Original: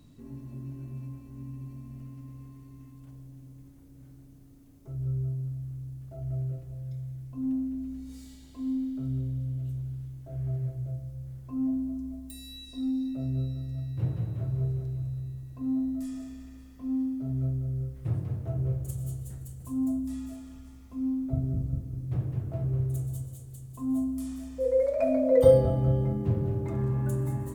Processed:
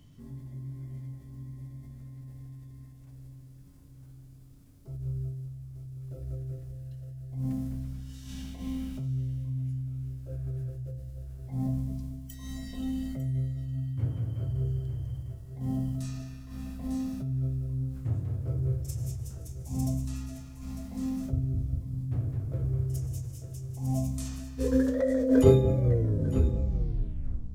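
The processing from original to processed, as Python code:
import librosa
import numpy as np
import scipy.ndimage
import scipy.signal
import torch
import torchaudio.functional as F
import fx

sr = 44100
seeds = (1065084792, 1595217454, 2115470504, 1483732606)

y = fx.tape_stop_end(x, sr, length_s=1.78)
y = y + 10.0 ** (-10.5 / 20.0) * np.pad(y, (int(901 * sr / 1000.0), 0))[:len(y)]
y = fx.formant_shift(y, sr, semitones=-4)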